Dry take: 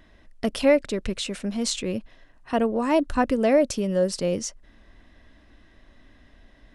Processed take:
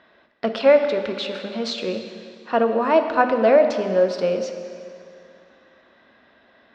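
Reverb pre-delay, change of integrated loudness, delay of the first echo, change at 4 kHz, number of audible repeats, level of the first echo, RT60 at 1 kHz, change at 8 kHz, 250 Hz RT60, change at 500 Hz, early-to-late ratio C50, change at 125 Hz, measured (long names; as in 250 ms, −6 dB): 4 ms, +4.0 dB, no echo audible, +1.5 dB, no echo audible, no echo audible, 2.4 s, below −10 dB, 2.4 s, +5.5 dB, 7.5 dB, −4.0 dB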